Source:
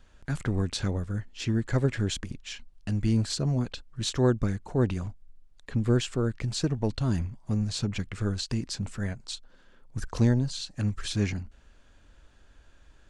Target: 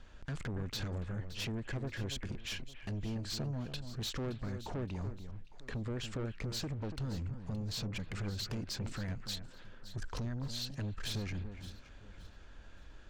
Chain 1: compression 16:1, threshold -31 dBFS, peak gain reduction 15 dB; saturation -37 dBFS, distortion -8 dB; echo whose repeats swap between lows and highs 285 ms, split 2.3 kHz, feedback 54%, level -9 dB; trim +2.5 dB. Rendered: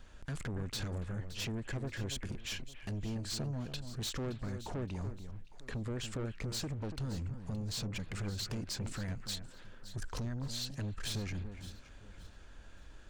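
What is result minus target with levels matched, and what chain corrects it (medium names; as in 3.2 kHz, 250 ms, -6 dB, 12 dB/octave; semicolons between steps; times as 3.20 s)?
8 kHz band +3.5 dB
compression 16:1, threshold -31 dBFS, peak gain reduction 15 dB; low-pass 6 kHz 12 dB/octave; saturation -37 dBFS, distortion -8 dB; echo whose repeats swap between lows and highs 285 ms, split 2.3 kHz, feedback 54%, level -9 dB; trim +2.5 dB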